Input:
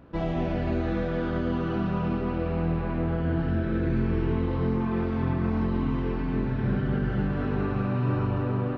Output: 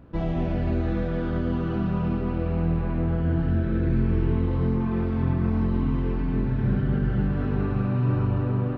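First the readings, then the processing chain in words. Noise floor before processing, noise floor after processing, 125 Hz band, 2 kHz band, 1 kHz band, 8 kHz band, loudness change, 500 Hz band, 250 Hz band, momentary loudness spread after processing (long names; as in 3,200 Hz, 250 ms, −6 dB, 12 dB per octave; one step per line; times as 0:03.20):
−29 dBFS, −27 dBFS, +3.5 dB, −2.5 dB, −2.0 dB, can't be measured, +2.0 dB, −1.0 dB, +1.5 dB, 3 LU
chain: low-shelf EQ 220 Hz +8 dB
level −2.5 dB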